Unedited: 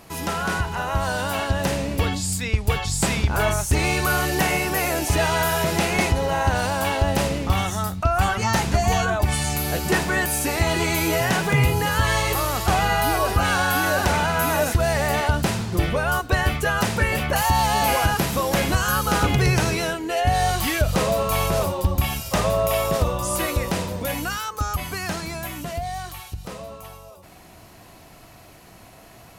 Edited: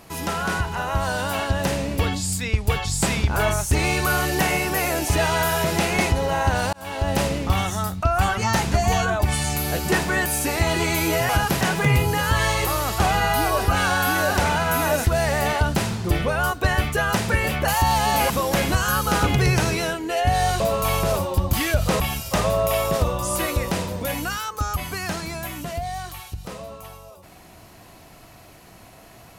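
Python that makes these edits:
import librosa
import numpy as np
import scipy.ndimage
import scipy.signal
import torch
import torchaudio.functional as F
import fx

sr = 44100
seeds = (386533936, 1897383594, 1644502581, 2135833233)

y = fx.edit(x, sr, fx.fade_in_span(start_s=6.73, length_s=0.43),
    fx.move(start_s=17.98, length_s=0.32, to_s=11.29),
    fx.move(start_s=20.6, length_s=0.47, to_s=22.0), tone=tone)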